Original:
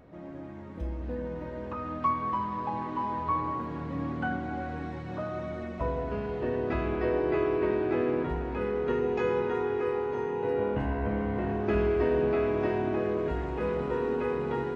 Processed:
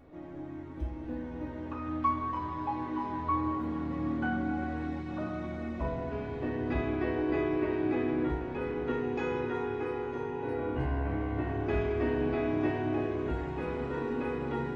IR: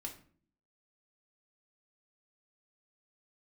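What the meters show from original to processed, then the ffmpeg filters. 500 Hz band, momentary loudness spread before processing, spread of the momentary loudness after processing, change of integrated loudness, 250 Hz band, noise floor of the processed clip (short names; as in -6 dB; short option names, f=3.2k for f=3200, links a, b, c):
-5.5 dB, 9 LU, 8 LU, -3.0 dB, +0.5 dB, -41 dBFS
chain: -filter_complex "[1:a]atrim=start_sample=2205[a];[0:a][a]afir=irnorm=-1:irlink=0,volume=1dB"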